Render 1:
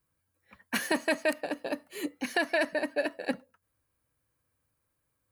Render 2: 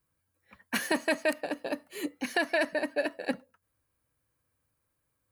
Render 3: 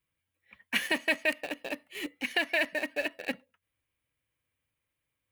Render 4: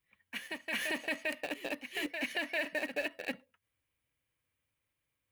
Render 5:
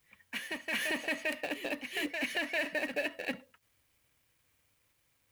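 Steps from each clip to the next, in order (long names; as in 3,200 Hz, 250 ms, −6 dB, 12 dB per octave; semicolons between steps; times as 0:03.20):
no processing that can be heard
flat-topped bell 2,600 Hz +11 dB 1.1 octaves; in parallel at −9.5 dB: bit reduction 5 bits; on the sum: level −7 dB
backwards echo 398 ms −11.5 dB; brickwall limiter −23.5 dBFS, peak gain reduction 10 dB; level −1 dB
mu-law and A-law mismatch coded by mu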